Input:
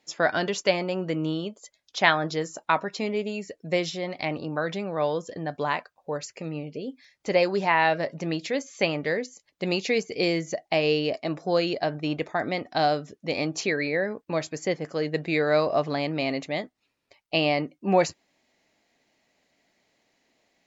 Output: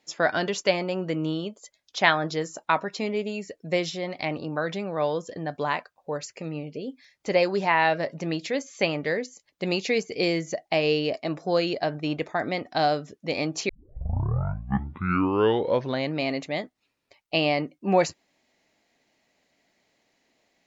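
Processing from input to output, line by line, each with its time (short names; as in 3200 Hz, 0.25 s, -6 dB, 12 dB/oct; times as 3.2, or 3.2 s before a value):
13.69 tape start 2.47 s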